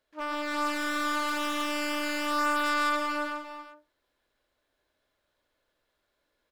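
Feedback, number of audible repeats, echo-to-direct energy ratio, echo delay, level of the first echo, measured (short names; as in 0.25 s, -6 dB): no steady repeat, 3, -2.5 dB, 0.139 s, -3.5 dB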